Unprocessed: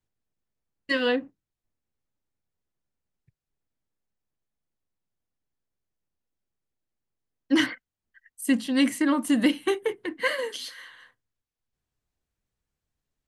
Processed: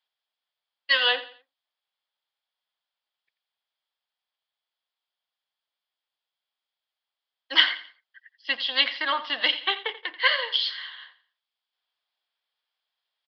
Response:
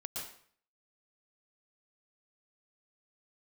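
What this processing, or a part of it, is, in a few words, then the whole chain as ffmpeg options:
musical greeting card: -af "bass=frequency=250:gain=8,treble=frequency=4000:gain=5,aecho=1:1:86|172|258:0.178|0.0587|0.0194,aresample=11025,aresample=44100,highpass=frequency=700:width=0.5412,highpass=frequency=700:width=1.3066,equalizer=frequency=3300:width_type=o:width=0.25:gain=11,volume=4.5dB"

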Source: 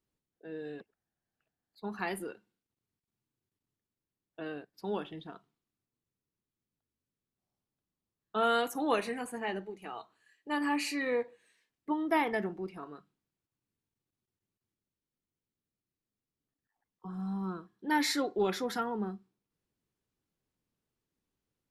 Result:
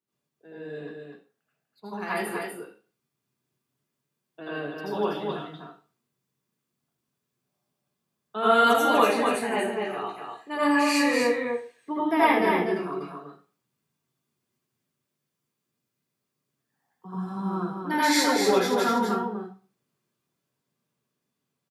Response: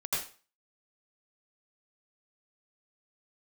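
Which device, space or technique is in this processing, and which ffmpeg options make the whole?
far laptop microphone: -filter_complex "[0:a]aecho=1:1:246:0.562[link_01];[1:a]atrim=start_sample=2205[link_02];[link_01][link_02]afir=irnorm=-1:irlink=0,highpass=frequency=120:width=0.5412,highpass=frequency=120:width=1.3066,dynaudnorm=framelen=560:gausssize=11:maxgain=4dB"

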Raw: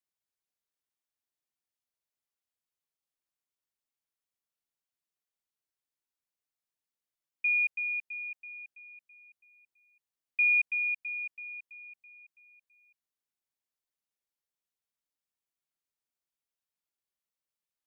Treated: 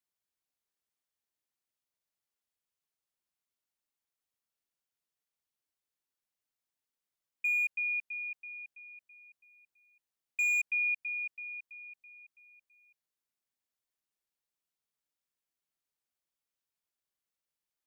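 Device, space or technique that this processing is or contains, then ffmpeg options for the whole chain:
clipper into limiter: -af "asoftclip=type=hard:threshold=-24dB,alimiter=level_in=2.5dB:limit=-24dB:level=0:latency=1,volume=-2.5dB"

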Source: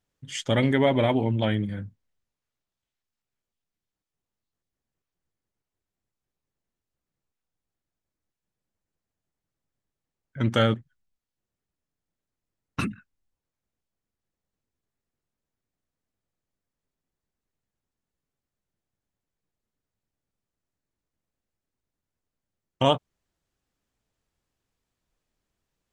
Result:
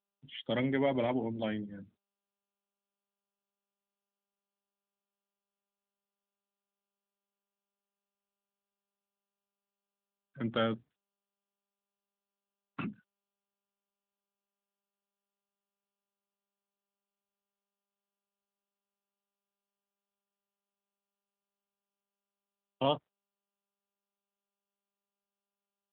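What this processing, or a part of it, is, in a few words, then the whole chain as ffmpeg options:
mobile call with aggressive noise cancelling: -af "highpass=frequency=140:width=0.5412,highpass=frequency=140:width=1.3066,afftdn=noise_reduction=17:noise_floor=-42,volume=-8dB" -ar 8000 -c:a libopencore_amrnb -b:a 10200

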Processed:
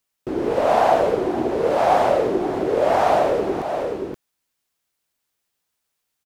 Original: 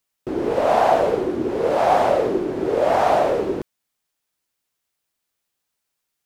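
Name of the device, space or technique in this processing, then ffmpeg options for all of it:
ducked delay: -filter_complex "[0:a]asplit=3[link_01][link_02][link_03];[link_02]adelay=526,volume=-4.5dB[link_04];[link_03]apad=whole_len=298865[link_05];[link_04][link_05]sidechaincompress=threshold=-28dB:ratio=8:attack=11:release=296[link_06];[link_01][link_06]amix=inputs=2:normalize=0"

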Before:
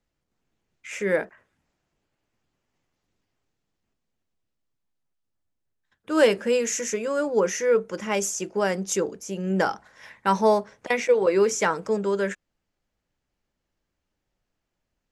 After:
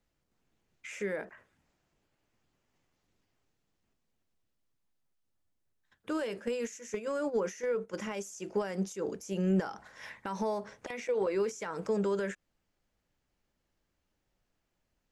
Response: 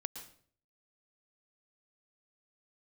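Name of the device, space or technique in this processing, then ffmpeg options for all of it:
de-esser from a sidechain: -filter_complex "[0:a]asplit=3[link_01][link_02][link_03];[link_01]afade=type=out:start_time=6.27:duration=0.02[link_04];[link_02]agate=range=-12dB:threshold=-26dB:ratio=16:detection=peak,afade=type=in:start_time=6.27:duration=0.02,afade=type=out:start_time=7.93:duration=0.02[link_05];[link_03]afade=type=in:start_time=7.93:duration=0.02[link_06];[link_04][link_05][link_06]amix=inputs=3:normalize=0,asplit=2[link_07][link_08];[link_08]highpass=frequency=4200:poles=1,apad=whole_len=666770[link_09];[link_07][link_09]sidechaincompress=threshold=-43dB:ratio=8:attack=0.68:release=97"

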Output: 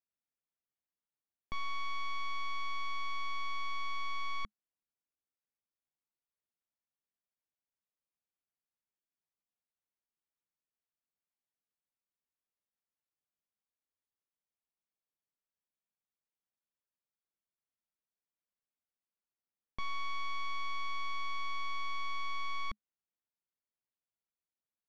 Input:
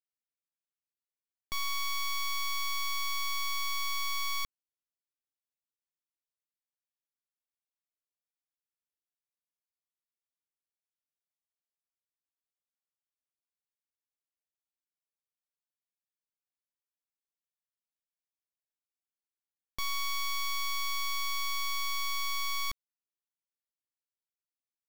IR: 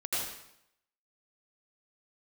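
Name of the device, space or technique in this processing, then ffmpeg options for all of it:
phone in a pocket: -af "lowpass=3200,equalizer=frequency=210:width_type=o:width=0.23:gain=5.5,highshelf=frequency=2400:gain=-9"

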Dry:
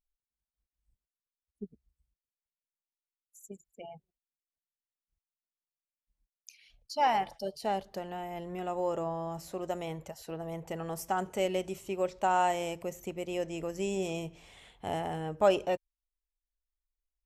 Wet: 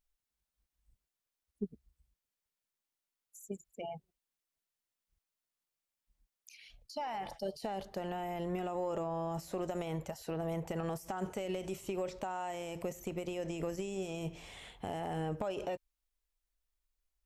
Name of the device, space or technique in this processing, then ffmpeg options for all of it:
de-esser from a sidechain: -filter_complex "[0:a]asplit=2[link_01][link_02];[link_02]highpass=frequency=4800:poles=1,apad=whole_len=761060[link_03];[link_01][link_03]sidechaincompress=threshold=-55dB:ratio=8:attack=3.1:release=32,volume=4.5dB"

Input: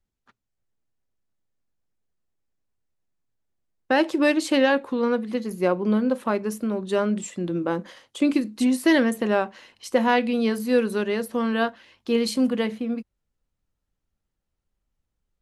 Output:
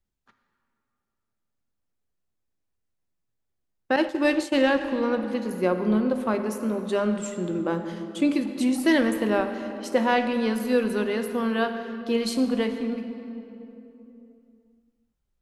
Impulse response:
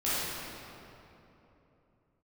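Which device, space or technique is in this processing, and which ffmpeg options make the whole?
saturated reverb return: -filter_complex "[0:a]asplit=2[link_01][link_02];[1:a]atrim=start_sample=2205[link_03];[link_02][link_03]afir=irnorm=-1:irlink=0,asoftclip=type=tanh:threshold=-5dB,volume=-15.5dB[link_04];[link_01][link_04]amix=inputs=2:normalize=0,asettb=1/sr,asplit=3[link_05][link_06][link_07];[link_05]atrim=end=3.964[link_08];[link_06]atrim=start=3.96:end=4.81,asetpts=PTS-STARTPTS,afade=type=in:duration=0.004:curve=qsin,afade=type=out:start_time=0.846:duration=0.004:curve=qsin,agate=range=-33dB:threshold=-17dB:ratio=3:detection=peak[link_09];[link_07]atrim=start=4.806[link_10];[link_08][link_09]acrossfade=duration=0.004:curve1=hsin:curve2=qsin[link_11];[link_11][link_10]acrossfade=duration=0.004:curve1=qsin:curve2=hsin,volume=-3dB"

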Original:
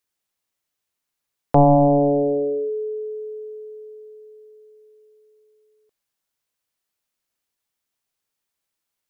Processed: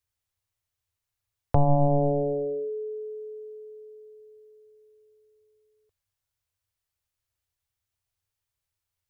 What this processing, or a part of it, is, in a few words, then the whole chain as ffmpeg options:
car stereo with a boomy subwoofer: -af "lowshelf=frequency=140:width_type=q:width=3:gain=13,alimiter=limit=-4.5dB:level=0:latency=1:release=334,volume=-5dB"

